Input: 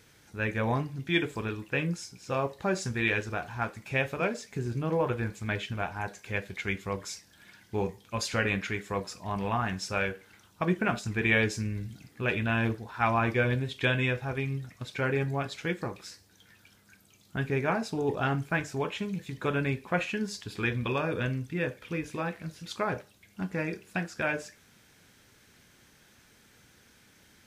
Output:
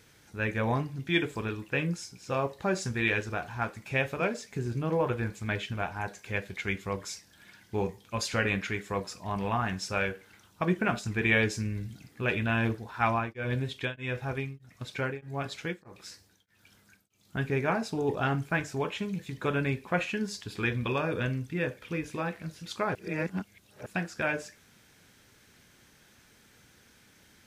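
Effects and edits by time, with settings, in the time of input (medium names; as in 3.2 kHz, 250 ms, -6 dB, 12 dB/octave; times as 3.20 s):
13.03–17.37 s: tremolo of two beating tones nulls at 1.6 Hz
22.95–23.86 s: reverse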